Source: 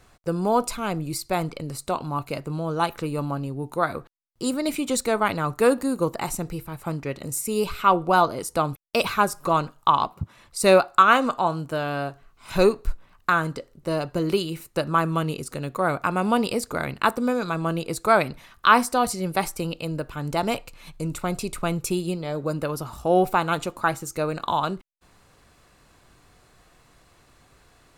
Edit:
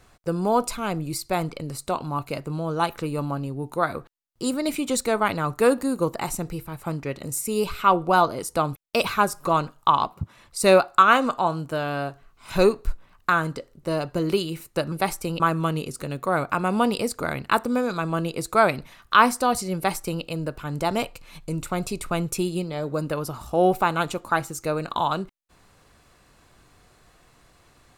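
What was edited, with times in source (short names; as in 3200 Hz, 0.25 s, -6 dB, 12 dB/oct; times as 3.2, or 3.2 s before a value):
19.27–19.75 copy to 14.92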